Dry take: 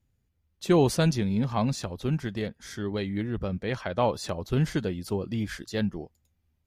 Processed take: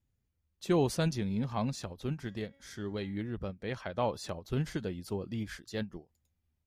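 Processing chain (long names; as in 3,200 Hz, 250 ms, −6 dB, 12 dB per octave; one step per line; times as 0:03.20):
0:02.16–0:03.19: hum removal 276.8 Hz, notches 28
every ending faded ahead of time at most 280 dB per second
level −6.5 dB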